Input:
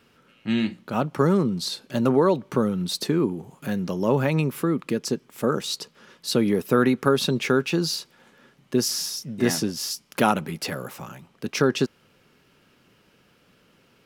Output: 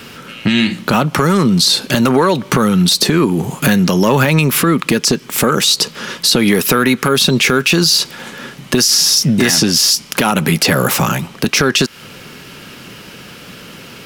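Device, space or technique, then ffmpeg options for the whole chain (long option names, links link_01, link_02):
mastering chain: -filter_complex "[0:a]equalizer=frequency=170:width_type=o:width=1.6:gain=3.5,acrossover=split=990|7400[link_01][link_02][link_03];[link_01]acompressor=threshold=-27dB:ratio=4[link_04];[link_02]acompressor=threshold=-31dB:ratio=4[link_05];[link_03]acompressor=threshold=-43dB:ratio=4[link_06];[link_04][link_05][link_06]amix=inputs=3:normalize=0,acompressor=threshold=-31dB:ratio=2.5,asoftclip=type=tanh:threshold=-21dB,tiltshelf=frequency=1500:gain=-3.5,alimiter=level_in=27dB:limit=-1dB:release=50:level=0:latency=1,volume=-2dB"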